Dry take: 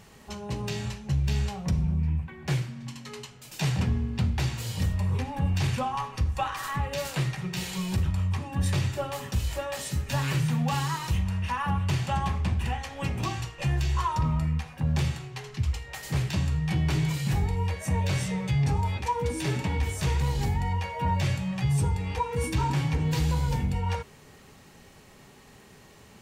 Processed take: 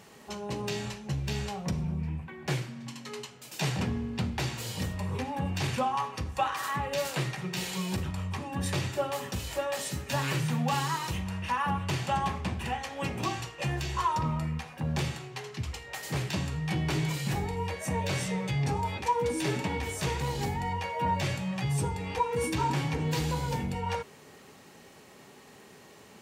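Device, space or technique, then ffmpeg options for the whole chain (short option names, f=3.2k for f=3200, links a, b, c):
filter by subtraction: -filter_complex "[0:a]asplit=2[a][b];[b]lowpass=350,volume=-1[c];[a][c]amix=inputs=2:normalize=0"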